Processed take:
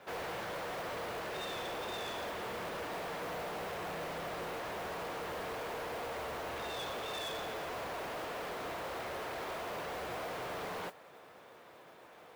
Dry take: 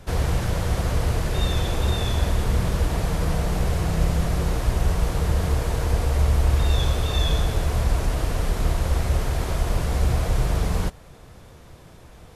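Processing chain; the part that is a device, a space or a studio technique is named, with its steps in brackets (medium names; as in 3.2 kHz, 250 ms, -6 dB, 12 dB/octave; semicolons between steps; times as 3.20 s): carbon microphone (band-pass 450–2900 Hz; saturation -34.5 dBFS, distortion -11 dB; modulation noise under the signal 17 dB); trim -2 dB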